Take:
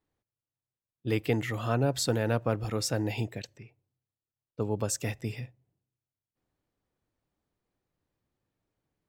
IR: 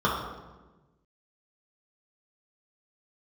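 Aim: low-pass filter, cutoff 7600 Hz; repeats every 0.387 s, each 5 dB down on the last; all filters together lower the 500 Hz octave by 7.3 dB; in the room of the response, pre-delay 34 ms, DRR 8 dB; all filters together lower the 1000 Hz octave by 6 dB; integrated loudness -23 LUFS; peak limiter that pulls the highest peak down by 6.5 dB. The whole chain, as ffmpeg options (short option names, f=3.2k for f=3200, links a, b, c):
-filter_complex "[0:a]lowpass=7.6k,equalizer=f=500:t=o:g=-7.5,equalizer=f=1k:t=o:g=-5.5,alimiter=limit=-22.5dB:level=0:latency=1,aecho=1:1:387|774|1161|1548|1935|2322|2709:0.562|0.315|0.176|0.0988|0.0553|0.031|0.0173,asplit=2[a][b];[1:a]atrim=start_sample=2205,adelay=34[c];[b][c]afir=irnorm=-1:irlink=0,volume=-24dB[d];[a][d]amix=inputs=2:normalize=0,volume=10.5dB"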